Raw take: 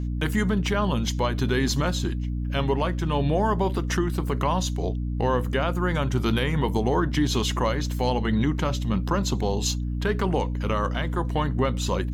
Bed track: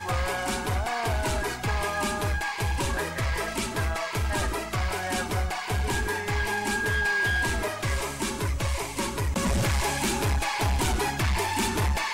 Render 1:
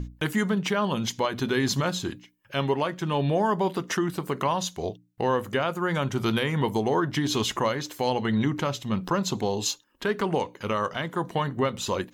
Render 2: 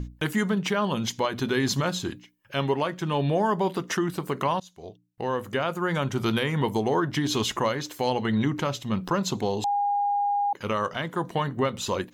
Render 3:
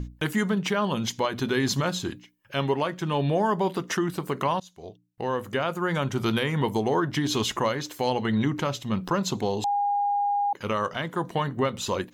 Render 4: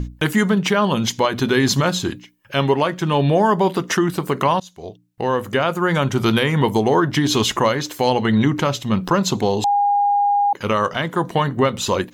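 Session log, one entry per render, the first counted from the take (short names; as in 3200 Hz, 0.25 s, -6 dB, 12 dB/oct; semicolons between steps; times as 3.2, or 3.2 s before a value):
notches 60/120/180/240/300 Hz
4.6–5.73 fade in, from -22.5 dB; 9.64–10.53 bleep 813 Hz -21.5 dBFS
nothing audible
gain +8 dB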